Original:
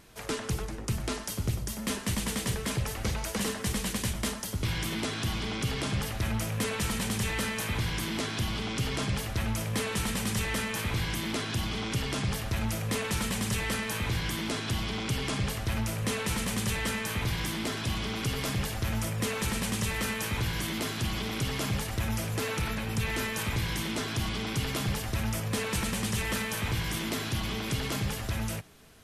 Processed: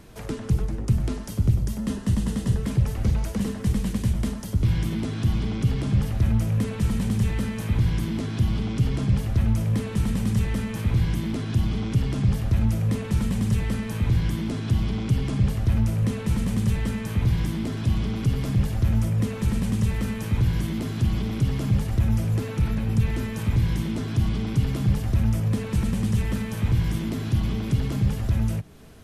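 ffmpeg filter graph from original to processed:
-filter_complex "[0:a]asettb=1/sr,asplit=3[a][b][c];[a]atrim=end=1.784[d];[b]atrim=start=1.78:end=2.62,asetpts=PTS-STARTPTS,afade=t=in:d=0.004:c=qsin,afade=t=out:st=0.836:d=0.004:c=qsin,lowpass=f=12k:w=0.5412,lowpass=f=12k:w=1.3066,bandreject=f=2.3k:w=7.5[e];[c]atrim=start=2.616[f];[d][e]acrossfade=d=0.004:c1=hsin:c2=qsin[g];[g][f]acrossfade=d=0.004:c1=qsin:c2=hsin,tiltshelf=f=730:g=5,acrossover=split=240[h][i];[i]acompressor=threshold=-48dB:ratio=2[j];[h][j]amix=inputs=2:normalize=0,volume=6dB"

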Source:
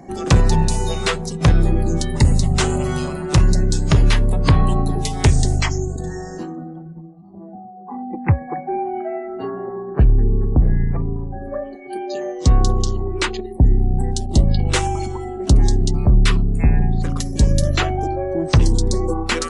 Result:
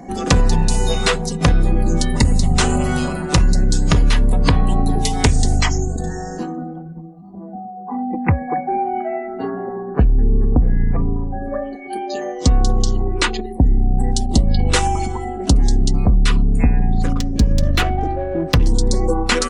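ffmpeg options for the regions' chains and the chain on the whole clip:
-filter_complex "[0:a]asettb=1/sr,asplit=3[a][b][c];[a]atrim=end=17.134[d];[b]atrim=start=17.13:end=18.67,asetpts=PTS-STARTPTS,afade=t=in:d=0.004:c=qsin,afade=t=out:st=1.536:d=0.004:c=qsin,equalizer=f=780:t=o:w=1.8:g=-3.5,adynamicsmooth=sensitivity=2:basefreq=1.7k[e];[c]atrim=start=18.666[f];[d][e]acrossfade=d=0.004:c1=hsin:c2=qsin[g];[g][f]acrossfade=d=0.004:c1=qsin:c2=hsin,aecho=1:1:4.1:0.41,acompressor=threshold=-13dB:ratio=6,volume=3.5dB"

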